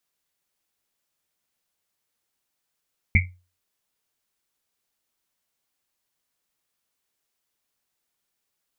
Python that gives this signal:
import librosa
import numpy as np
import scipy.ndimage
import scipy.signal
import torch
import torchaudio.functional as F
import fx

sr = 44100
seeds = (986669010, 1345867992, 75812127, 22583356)

y = fx.risset_drum(sr, seeds[0], length_s=1.1, hz=90.0, decay_s=0.33, noise_hz=2200.0, noise_width_hz=250.0, noise_pct=50)